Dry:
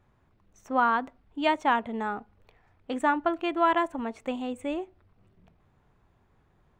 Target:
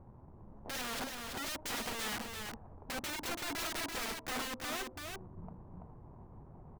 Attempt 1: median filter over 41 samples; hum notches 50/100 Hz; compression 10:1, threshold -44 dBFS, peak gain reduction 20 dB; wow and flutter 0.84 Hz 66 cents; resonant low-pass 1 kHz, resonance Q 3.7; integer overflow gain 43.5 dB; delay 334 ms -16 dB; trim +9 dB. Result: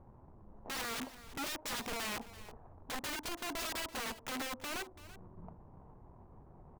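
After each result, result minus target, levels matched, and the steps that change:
echo-to-direct -11.5 dB; 125 Hz band -3.0 dB
change: delay 334 ms -4.5 dB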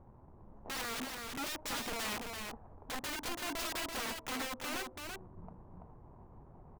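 125 Hz band -2.5 dB
add after compression: peaking EQ 140 Hz +4 dB 2.3 oct

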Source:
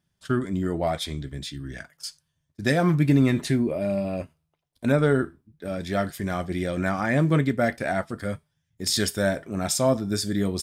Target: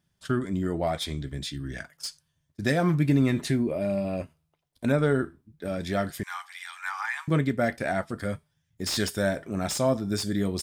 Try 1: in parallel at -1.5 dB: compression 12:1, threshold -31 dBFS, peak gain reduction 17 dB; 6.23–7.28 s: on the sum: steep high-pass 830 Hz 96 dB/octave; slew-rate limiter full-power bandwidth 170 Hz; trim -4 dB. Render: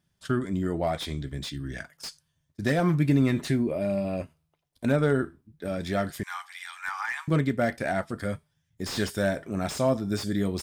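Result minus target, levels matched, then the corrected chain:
slew-rate limiter: distortion +5 dB
in parallel at -1.5 dB: compression 12:1, threshold -31 dBFS, peak gain reduction 17 dB; 6.23–7.28 s: on the sum: steep high-pass 830 Hz 96 dB/octave; slew-rate limiter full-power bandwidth 411.5 Hz; trim -4 dB

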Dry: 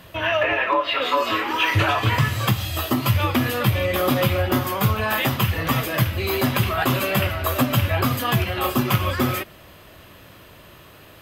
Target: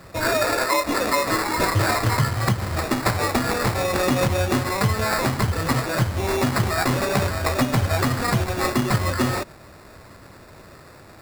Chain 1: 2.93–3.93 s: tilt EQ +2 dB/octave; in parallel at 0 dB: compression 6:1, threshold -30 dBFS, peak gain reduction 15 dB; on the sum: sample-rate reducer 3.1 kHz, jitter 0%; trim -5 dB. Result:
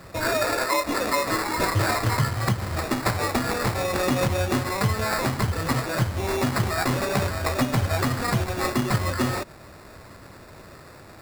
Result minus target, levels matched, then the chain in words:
compression: peak gain reduction +9 dB
2.93–3.93 s: tilt EQ +2 dB/octave; in parallel at 0 dB: compression 6:1, threshold -19.5 dBFS, peak gain reduction 6.5 dB; on the sum: sample-rate reducer 3.1 kHz, jitter 0%; trim -5 dB

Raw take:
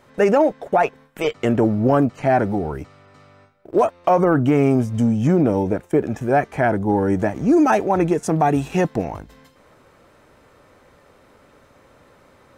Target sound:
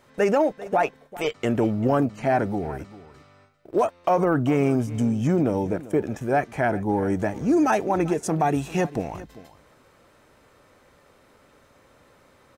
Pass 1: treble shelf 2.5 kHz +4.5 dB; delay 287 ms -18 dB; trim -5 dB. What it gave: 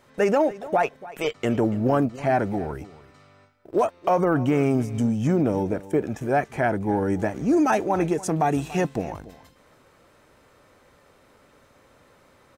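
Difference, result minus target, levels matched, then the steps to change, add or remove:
echo 107 ms early
change: delay 394 ms -18 dB

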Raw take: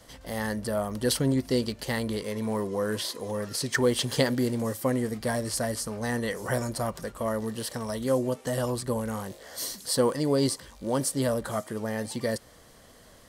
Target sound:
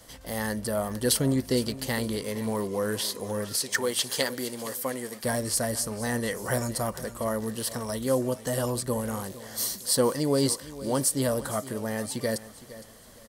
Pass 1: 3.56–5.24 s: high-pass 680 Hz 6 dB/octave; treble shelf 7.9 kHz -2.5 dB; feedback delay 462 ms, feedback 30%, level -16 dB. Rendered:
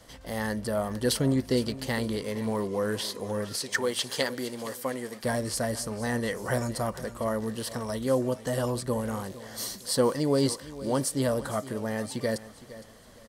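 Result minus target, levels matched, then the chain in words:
8 kHz band -4.5 dB
3.56–5.24 s: high-pass 680 Hz 6 dB/octave; treble shelf 7.9 kHz +8.5 dB; feedback delay 462 ms, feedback 30%, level -16 dB

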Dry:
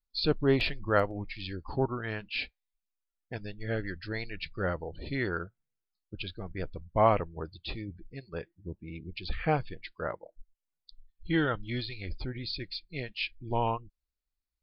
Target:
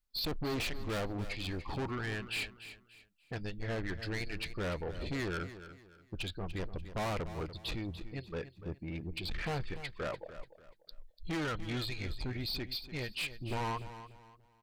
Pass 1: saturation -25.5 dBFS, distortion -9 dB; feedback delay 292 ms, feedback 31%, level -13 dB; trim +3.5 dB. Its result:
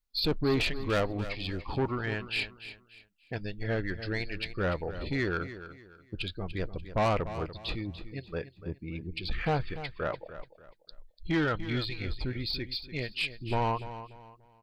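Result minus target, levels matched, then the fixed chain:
saturation: distortion -6 dB
saturation -36.5 dBFS, distortion -2 dB; feedback delay 292 ms, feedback 31%, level -13 dB; trim +3.5 dB

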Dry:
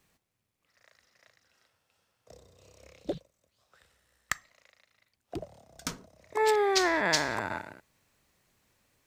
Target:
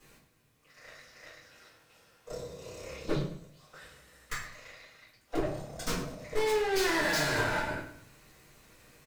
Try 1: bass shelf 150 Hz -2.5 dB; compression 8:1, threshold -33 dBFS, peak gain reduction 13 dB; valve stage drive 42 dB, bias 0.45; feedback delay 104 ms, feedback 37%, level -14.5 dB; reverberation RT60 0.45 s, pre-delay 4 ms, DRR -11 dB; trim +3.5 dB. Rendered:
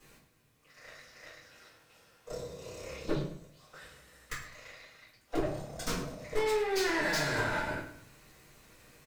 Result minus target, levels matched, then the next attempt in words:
compression: peak gain reduction +8.5 dB
bass shelf 150 Hz -2.5 dB; compression 8:1, threshold -23.5 dBFS, peak gain reduction 4.5 dB; valve stage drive 42 dB, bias 0.45; feedback delay 104 ms, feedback 37%, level -14.5 dB; reverberation RT60 0.45 s, pre-delay 4 ms, DRR -11 dB; trim +3.5 dB

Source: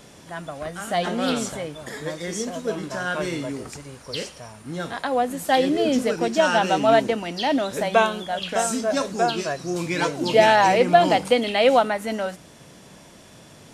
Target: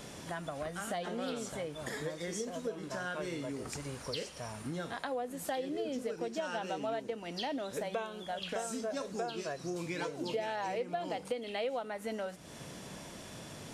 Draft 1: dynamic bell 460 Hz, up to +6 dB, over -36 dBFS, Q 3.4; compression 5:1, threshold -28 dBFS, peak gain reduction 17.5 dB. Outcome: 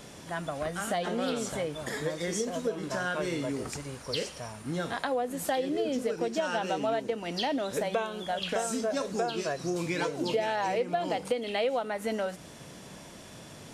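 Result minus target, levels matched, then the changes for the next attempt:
compression: peak gain reduction -7 dB
change: compression 5:1, threshold -36.5 dBFS, peak gain reduction 24.5 dB

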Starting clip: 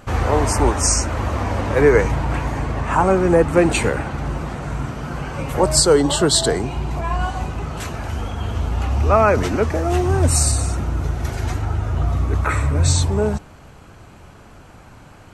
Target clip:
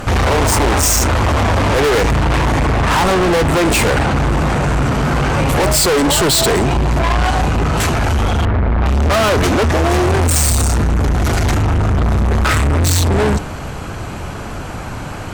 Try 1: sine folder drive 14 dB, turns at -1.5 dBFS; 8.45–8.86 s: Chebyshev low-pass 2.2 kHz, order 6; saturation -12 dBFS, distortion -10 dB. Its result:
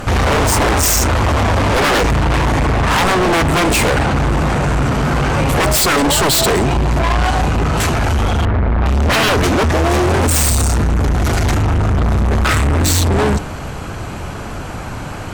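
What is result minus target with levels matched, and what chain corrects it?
sine folder: distortion +19 dB
sine folder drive 14 dB, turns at 9 dBFS; 8.45–8.86 s: Chebyshev low-pass 2.2 kHz, order 6; saturation -12 dBFS, distortion -4 dB

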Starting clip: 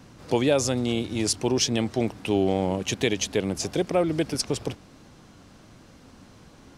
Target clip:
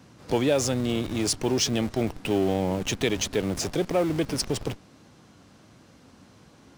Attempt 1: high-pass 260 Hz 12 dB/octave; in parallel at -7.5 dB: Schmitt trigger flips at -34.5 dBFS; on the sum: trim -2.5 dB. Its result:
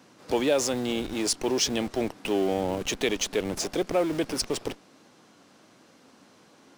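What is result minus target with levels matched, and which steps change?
125 Hz band -8.0 dB
change: high-pass 70 Hz 12 dB/octave

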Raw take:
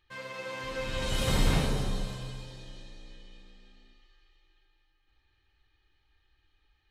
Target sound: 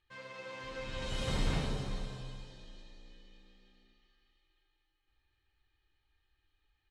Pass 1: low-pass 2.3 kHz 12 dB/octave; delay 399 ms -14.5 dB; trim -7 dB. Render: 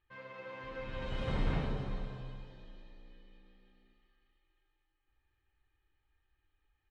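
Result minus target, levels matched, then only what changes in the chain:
8 kHz band -16.5 dB
change: low-pass 7.4 kHz 12 dB/octave

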